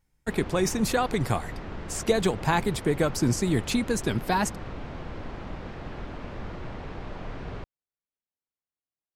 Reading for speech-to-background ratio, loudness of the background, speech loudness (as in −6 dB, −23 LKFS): 12.5 dB, −39.0 LKFS, −26.5 LKFS